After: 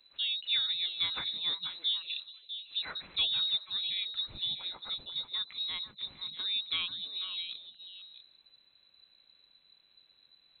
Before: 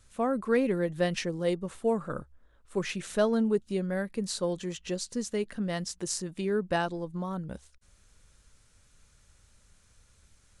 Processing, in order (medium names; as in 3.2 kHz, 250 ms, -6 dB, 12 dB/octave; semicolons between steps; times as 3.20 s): frequency inversion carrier 4 kHz; repeats whose band climbs or falls 162 ms, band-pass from 170 Hz, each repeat 1.4 oct, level -0.5 dB; trim -5.5 dB